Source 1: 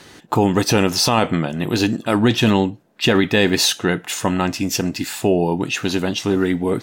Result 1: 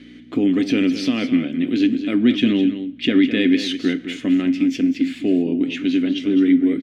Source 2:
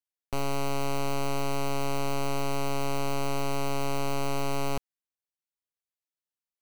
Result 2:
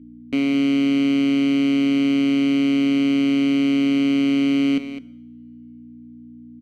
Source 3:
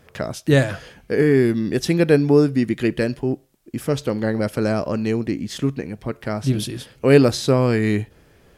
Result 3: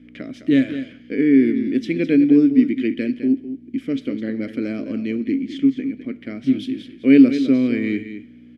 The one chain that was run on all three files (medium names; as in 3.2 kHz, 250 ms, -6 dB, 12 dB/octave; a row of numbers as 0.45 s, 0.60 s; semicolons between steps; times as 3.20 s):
peaking EQ 760 Hz +9 dB 1.7 oct; hum 60 Hz, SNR 20 dB; vowel filter i; delay 208 ms -11 dB; two-slope reverb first 0.75 s, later 3 s, from -26 dB, DRR 16.5 dB; normalise loudness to -19 LUFS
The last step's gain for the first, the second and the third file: +7.0 dB, +19.5 dB, +7.0 dB